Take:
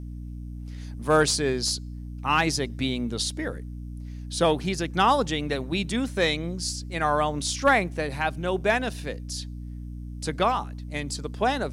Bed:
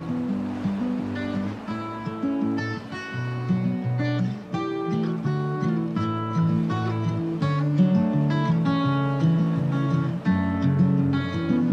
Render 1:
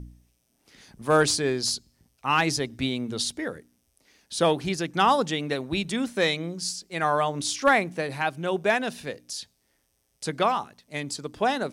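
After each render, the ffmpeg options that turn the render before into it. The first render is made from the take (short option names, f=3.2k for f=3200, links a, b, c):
-af "bandreject=f=60:t=h:w=4,bandreject=f=120:t=h:w=4,bandreject=f=180:t=h:w=4,bandreject=f=240:t=h:w=4,bandreject=f=300:t=h:w=4"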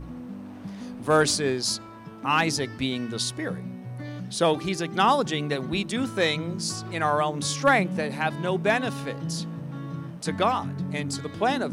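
-filter_complex "[1:a]volume=-11.5dB[a];[0:a][a]amix=inputs=2:normalize=0"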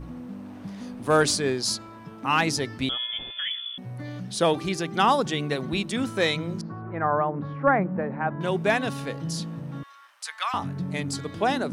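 -filter_complex "[0:a]asettb=1/sr,asplit=3[a][b][c];[a]atrim=end=2.894[d];[b]atrim=start=2.89:end=3.78,asetpts=PTS-STARTPTS,afade=t=in:d=0.004:c=qsin,afade=t=out:st=0.886:d=0.004:c=qsin,lowpass=f=3.1k:t=q:w=0.5098,lowpass=f=3.1k:t=q:w=0.6013,lowpass=f=3.1k:t=q:w=0.9,lowpass=f=3.1k:t=q:w=2.563,afreqshift=-3600[e];[c]atrim=start=3.776[f];[d][e]acrossfade=d=0.004:c1=hsin:c2=qsin[g];[g][f]acrossfade=d=0.004:c1=qsin:c2=hsin,asettb=1/sr,asplit=3[h][i][j];[h]atrim=end=6.614[k];[i]atrim=start=6.61:end=8.41,asetpts=PTS-STARTPTS,afade=t=in:d=0.004:c=qsin,afade=t=out:st=1.796:d=0.004:c=qsin,lowpass=f=1.6k:w=0.5412,lowpass=f=1.6k:w=1.3066[l];[j]atrim=start=8.406[m];[k][l]acrossfade=d=0.004:c1=hsin:c2=qsin[n];[n][m]acrossfade=d=0.004:c1=qsin:c2=hsin,asettb=1/sr,asplit=3[o][p][q];[o]atrim=end=9.834[r];[p]atrim=start=9.83:end=10.54,asetpts=PTS-STARTPTS,afade=t=in:d=0.004:c=qsin,afade=t=out:st=0.706:d=0.004:c=qsin,highpass=f=1.1k:w=0.5412,highpass=f=1.1k:w=1.3066[s];[q]atrim=start=10.536[t];[r][s]acrossfade=d=0.004:c1=hsin:c2=qsin[u];[u][t]acrossfade=d=0.004:c1=qsin:c2=hsin"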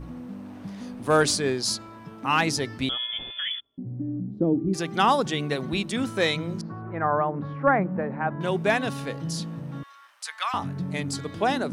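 -filter_complex "[0:a]asplit=3[a][b][c];[a]afade=t=out:st=3.59:d=0.02[d];[b]lowpass=f=290:t=q:w=3,afade=t=in:st=3.59:d=0.02,afade=t=out:st=4.73:d=0.02[e];[c]afade=t=in:st=4.73:d=0.02[f];[d][e][f]amix=inputs=3:normalize=0"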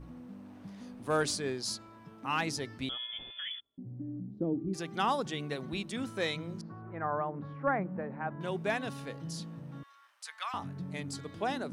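-af "volume=-9.5dB"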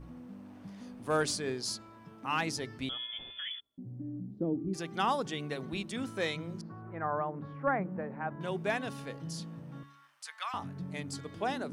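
-af "bandreject=f=3.9k:w=27,bandreject=f=71.03:t=h:w=4,bandreject=f=142.06:t=h:w=4,bandreject=f=213.09:t=h:w=4,bandreject=f=284.12:t=h:w=4,bandreject=f=355.15:t=h:w=4,bandreject=f=426.18:t=h:w=4"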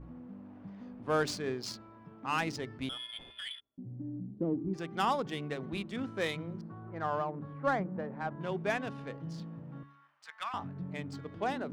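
-af "adynamicsmooth=sensitivity=7.5:basefreq=2.1k"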